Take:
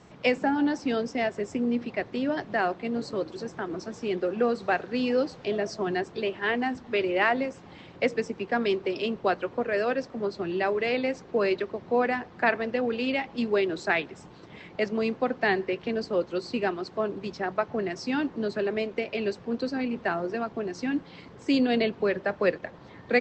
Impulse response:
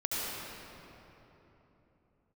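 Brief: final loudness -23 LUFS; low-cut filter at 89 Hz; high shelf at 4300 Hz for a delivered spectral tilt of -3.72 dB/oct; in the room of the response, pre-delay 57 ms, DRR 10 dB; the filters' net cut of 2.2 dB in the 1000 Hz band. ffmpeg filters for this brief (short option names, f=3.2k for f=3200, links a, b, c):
-filter_complex "[0:a]highpass=89,equalizer=f=1k:t=o:g=-3,highshelf=f=4.3k:g=-5.5,asplit=2[a][b];[1:a]atrim=start_sample=2205,adelay=57[c];[b][c]afir=irnorm=-1:irlink=0,volume=-17.5dB[d];[a][d]amix=inputs=2:normalize=0,volume=5.5dB"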